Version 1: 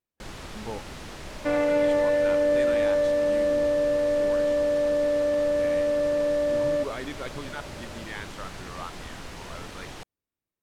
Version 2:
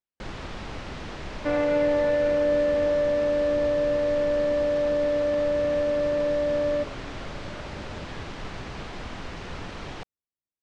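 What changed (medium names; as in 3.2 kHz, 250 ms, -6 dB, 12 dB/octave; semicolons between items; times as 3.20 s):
speech -11.5 dB; first sound +4.0 dB; master: add distance through air 120 m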